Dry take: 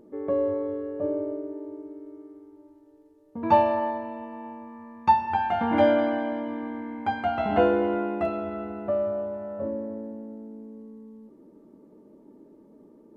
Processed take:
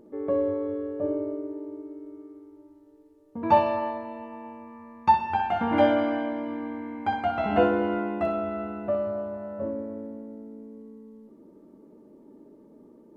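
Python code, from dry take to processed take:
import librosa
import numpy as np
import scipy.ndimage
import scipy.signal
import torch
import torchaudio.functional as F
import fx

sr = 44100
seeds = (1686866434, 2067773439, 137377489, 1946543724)

y = fx.room_flutter(x, sr, wall_m=10.6, rt60_s=0.41)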